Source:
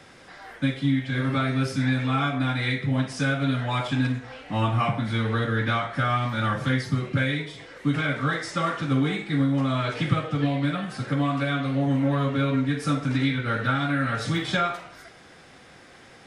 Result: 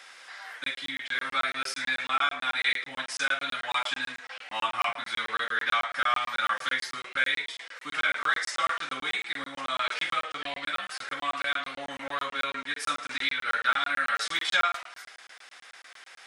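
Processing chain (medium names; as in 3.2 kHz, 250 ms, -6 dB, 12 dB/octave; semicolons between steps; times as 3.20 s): high-pass 1.2 kHz 12 dB/octave; crackling interface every 0.11 s, samples 1024, zero, from 0.64 s; trim +4 dB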